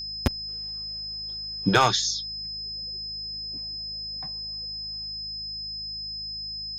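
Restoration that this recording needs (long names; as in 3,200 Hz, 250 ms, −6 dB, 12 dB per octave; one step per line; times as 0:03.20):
clipped peaks rebuilt −10.5 dBFS
hum removal 52.6 Hz, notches 4
notch filter 5,100 Hz, Q 30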